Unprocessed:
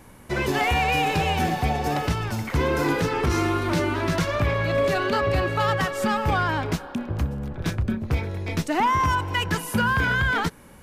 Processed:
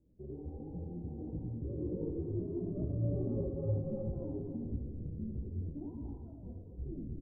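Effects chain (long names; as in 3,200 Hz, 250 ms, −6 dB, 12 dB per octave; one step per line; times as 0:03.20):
turntable brake at the end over 1.92 s
source passing by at 0:04.88, 14 m/s, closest 3.9 metres
inverse Chebyshev low-pass filter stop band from 1,800 Hz, stop band 70 dB
mains-hum notches 50/100/150/200/250 Hz
downward compressor 5 to 1, threshold −43 dBFS, peak gain reduction 16.5 dB
tempo change 1.5×
single-tap delay 87 ms −4 dB
on a send at −6 dB: convolution reverb RT60 0.45 s, pre-delay 201 ms
on the sum: micro pitch shift up and down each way 51 cents
level +10.5 dB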